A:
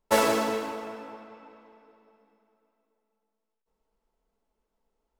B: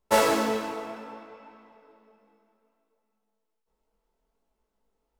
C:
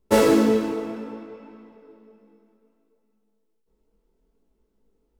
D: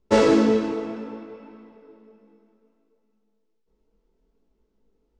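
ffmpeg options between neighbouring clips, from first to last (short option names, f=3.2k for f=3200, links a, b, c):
-af "flanger=delay=19:depth=5.3:speed=0.63,volume=4dB"
-af "lowshelf=f=520:t=q:w=1.5:g=9.5"
-af "lowpass=f=6.7k:w=0.5412,lowpass=f=6.7k:w=1.3066"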